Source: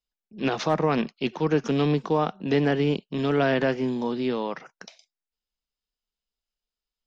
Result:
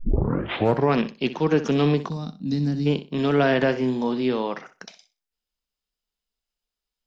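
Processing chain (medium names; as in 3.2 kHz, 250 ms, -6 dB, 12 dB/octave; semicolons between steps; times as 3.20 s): tape start-up on the opening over 0.93 s; time-frequency box 2.10–2.86 s, 280–3600 Hz -19 dB; flutter echo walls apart 10.7 m, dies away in 0.28 s; trim +2.5 dB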